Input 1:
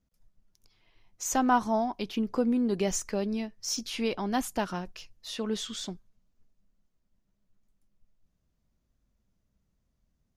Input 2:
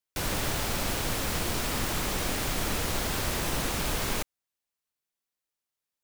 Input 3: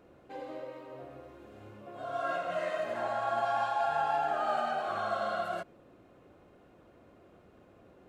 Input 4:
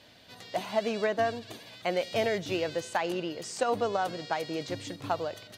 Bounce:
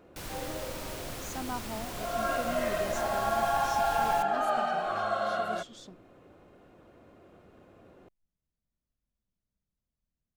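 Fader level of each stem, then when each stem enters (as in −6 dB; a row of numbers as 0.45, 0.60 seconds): −13.0 dB, −10.5 dB, +2.5 dB, muted; 0.00 s, 0.00 s, 0.00 s, muted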